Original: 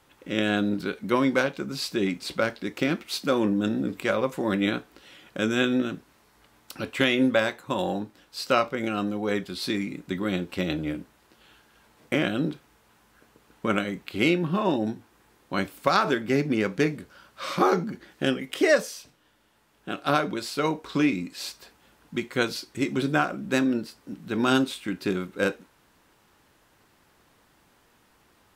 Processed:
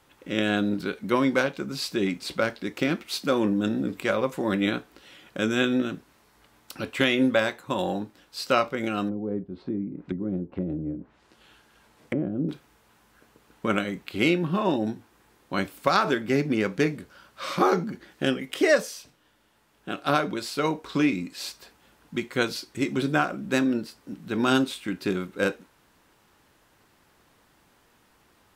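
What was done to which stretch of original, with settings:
9.08–12.49 treble ducked by the level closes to 390 Hz, closed at -27 dBFS

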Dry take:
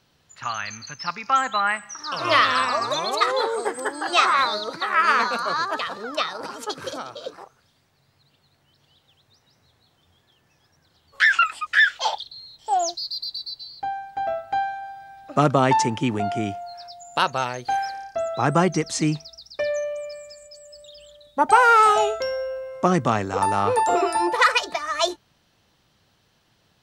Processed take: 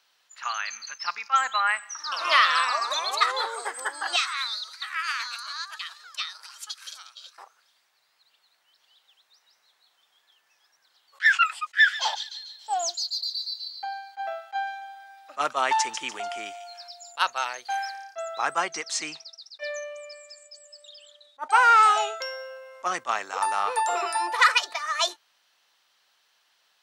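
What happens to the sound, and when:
4.16–7.38 Bessel high-pass 3000 Hz
11.6–17.12 thin delay 0.146 s, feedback 42%, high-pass 3500 Hz, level -7 dB
18.61–22.17 LPF 8600 Hz
whole clip: HPF 1000 Hz 12 dB/oct; attack slew limiter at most 500 dB/s

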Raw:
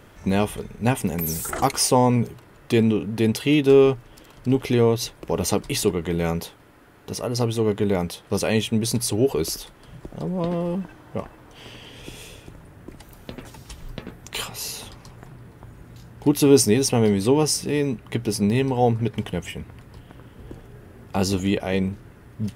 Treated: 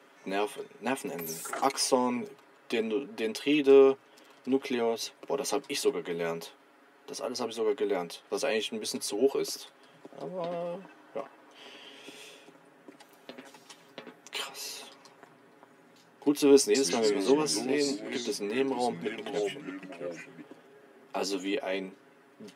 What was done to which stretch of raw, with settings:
16.59–20.52 echoes that change speed 0.154 s, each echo -3 st, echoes 2, each echo -6 dB
whole clip: Bessel high-pass 340 Hz, order 8; high shelf 10000 Hz -11.5 dB; comb 7.3 ms, depth 67%; gain -6.5 dB

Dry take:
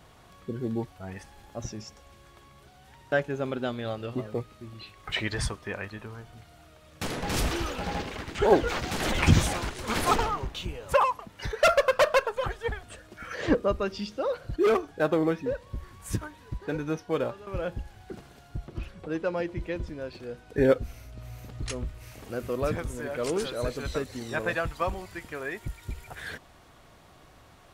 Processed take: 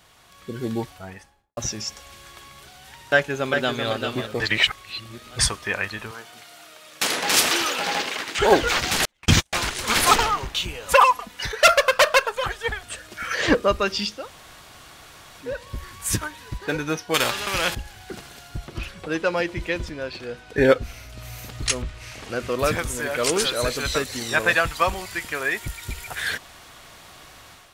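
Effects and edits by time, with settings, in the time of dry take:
0.74–1.57 studio fade out
3.13–3.87 echo throw 0.39 s, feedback 15%, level -6 dB
4.4–5.39 reverse
6.11–8.39 HPF 270 Hz
9.05–9.53 gate -21 dBFS, range -51 dB
10.85–11.43 comb 4.1 ms
14.17–15.5 room tone, crossfade 0.24 s
17.14–17.75 spectral compressor 2:1
19.89–21.1 high shelf 7100 Hz -11 dB
21.82–22.59 air absorption 67 m
whole clip: tilt shelf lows -6.5 dB, about 1100 Hz; AGC gain up to 9.5 dB

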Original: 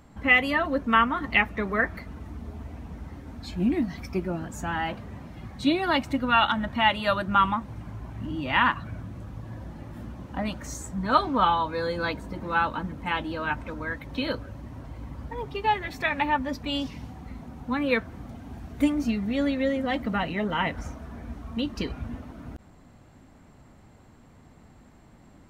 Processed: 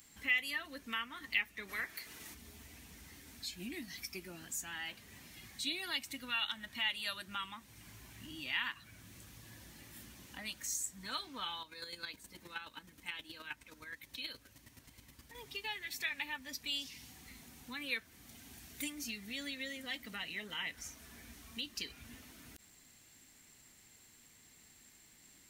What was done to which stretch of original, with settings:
1.68–2.33 spectral limiter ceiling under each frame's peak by 16 dB
11.61–15.35 chopper 9.5 Hz, depth 60%, duty 20%
whole clip: pre-emphasis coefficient 0.97; compressor 1.5:1, threshold -59 dBFS; band shelf 870 Hz -8 dB; gain +10 dB

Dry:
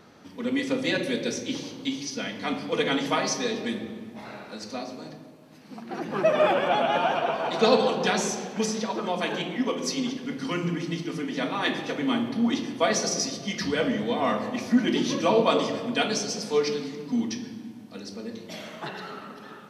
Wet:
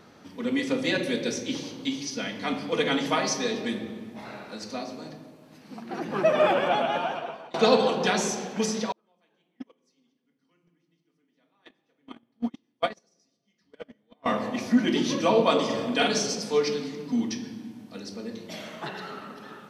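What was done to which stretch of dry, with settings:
6.66–7.54 fade out, to -24 dB
8.92–14.26 gate -21 dBFS, range -41 dB
15.65–16.35 doubler 45 ms -3 dB

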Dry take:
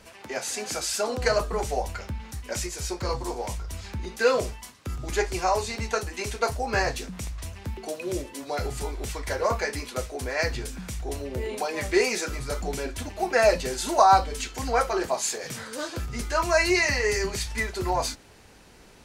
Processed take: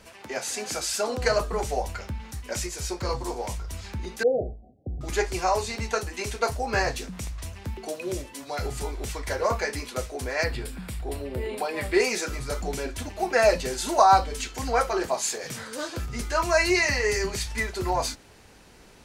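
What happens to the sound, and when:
4.23–5.01 Chebyshev low-pass 780 Hz, order 10
8.14–8.63 bell 390 Hz -6 dB 1.2 oct
10.44–12 bell 6200 Hz -15 dB 0.33 oct

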